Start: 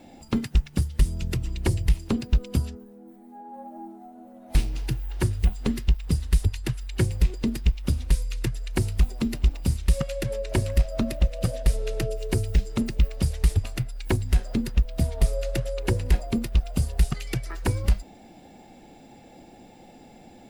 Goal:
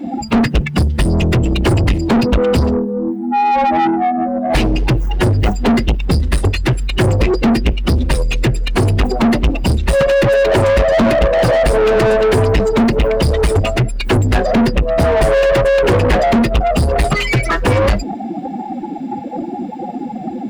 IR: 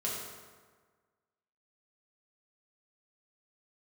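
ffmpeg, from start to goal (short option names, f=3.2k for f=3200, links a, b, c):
-filter_complex "[0:a]afftdn=nr=25:nf=-38,asplit=2[a][b];[b]highpass=f=720:p=1,volume=40dB,asoftclip=type=tanh:threshold=-11dB[c];[a][c]amix=inputs=2:normalize=0,lowpass=f=1.7k:p=1,volume=-6dB,volume=6.5dB"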